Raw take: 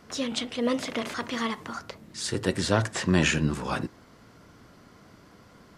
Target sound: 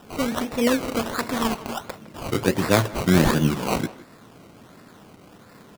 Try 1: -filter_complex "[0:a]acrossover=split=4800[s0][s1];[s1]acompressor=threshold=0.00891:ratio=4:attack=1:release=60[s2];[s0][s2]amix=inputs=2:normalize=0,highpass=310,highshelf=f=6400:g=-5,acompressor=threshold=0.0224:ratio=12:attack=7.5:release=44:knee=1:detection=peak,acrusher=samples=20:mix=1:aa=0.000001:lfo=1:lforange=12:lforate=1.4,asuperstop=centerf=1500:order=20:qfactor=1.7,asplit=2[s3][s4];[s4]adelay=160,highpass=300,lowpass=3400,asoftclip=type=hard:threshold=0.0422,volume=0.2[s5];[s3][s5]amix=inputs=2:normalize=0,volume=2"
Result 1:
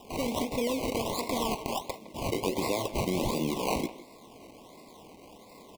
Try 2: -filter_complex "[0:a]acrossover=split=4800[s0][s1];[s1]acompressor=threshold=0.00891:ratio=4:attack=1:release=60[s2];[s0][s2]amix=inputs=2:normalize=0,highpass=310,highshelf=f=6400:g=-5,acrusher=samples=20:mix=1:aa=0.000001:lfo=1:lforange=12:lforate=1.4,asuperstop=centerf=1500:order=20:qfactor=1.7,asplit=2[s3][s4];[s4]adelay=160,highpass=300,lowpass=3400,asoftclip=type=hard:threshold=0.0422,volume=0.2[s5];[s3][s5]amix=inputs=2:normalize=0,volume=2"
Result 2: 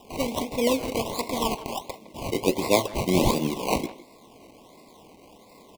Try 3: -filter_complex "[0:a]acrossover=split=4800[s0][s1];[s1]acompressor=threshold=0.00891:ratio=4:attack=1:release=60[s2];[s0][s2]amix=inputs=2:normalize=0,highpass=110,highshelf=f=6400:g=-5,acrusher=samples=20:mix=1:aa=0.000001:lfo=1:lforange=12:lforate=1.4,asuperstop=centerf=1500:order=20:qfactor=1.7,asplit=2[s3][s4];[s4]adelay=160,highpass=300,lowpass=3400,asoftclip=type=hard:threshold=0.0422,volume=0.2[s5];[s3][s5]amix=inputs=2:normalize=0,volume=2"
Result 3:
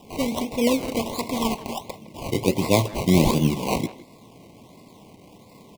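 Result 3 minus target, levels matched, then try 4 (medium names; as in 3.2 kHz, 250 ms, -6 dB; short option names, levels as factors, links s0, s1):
2 kHz band -5.0 dB
-filter_complex "[0:a]acrossover=split=4800[s0][s1];[s1]acompressor=threshold=0.00891:ratio=4:attack=1:release=60[s2];[s0][s2]amix=inputs=2:normalize=0,highpass=110,highshelf=f=6400:g=-5,acrusher=samples=20:mix=1:aa=0.000001:lfo=1:lforange=12:lforate=1.4,asplit=2[s3][s4];[s4]adelay=160,highpass=300,lowpass=3400,asoftclip=type=hard:threshold=0.0422,volume=0.2[s5];[s3][s5]amix=inputs=2:normalize=0,volume=2"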